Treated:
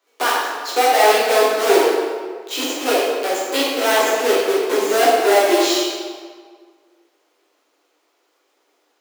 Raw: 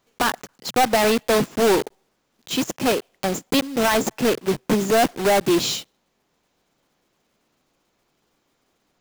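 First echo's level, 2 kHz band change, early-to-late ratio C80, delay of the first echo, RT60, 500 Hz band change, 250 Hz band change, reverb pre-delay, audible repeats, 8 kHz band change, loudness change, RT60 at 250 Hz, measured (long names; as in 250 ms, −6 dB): no echo audible, +5.0 dB, 1.5 dB, no echo audible, 1.7 s, +5.5 dB, −2.0 dB, 7 ms, no echo audible, +3.5 dB, +4.0 dB, 1.6 s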